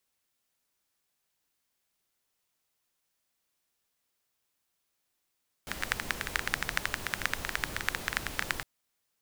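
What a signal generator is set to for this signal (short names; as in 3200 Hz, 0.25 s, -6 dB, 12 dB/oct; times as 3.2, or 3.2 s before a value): rain from filtered ticks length 2.96 s, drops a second 13, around 1700 Hz, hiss -4.5 dB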